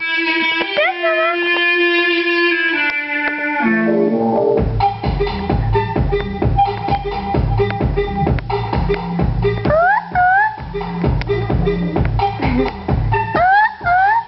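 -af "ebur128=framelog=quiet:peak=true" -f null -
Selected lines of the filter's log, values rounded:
Integrated loudness:
  I:         -16.0 LUFS
  Threshold: -26.0 LUFS
Loudness range:
  LRA:         3.5 LU
  Threshold: -36.4 LUFS
  LRA low:   -18.0 LUFS
  LRA high:  -14.5 LUFS
True peak:
  Peak:       -4.4 dBFS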